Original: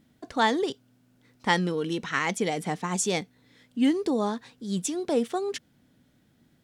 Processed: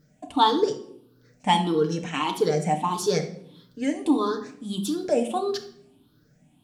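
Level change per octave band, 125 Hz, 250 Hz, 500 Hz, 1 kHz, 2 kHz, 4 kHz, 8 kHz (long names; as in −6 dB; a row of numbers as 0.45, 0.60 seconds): +3.0, +1.5, +4.0, +5.5, −5.5, +3.5, −3.5 decibels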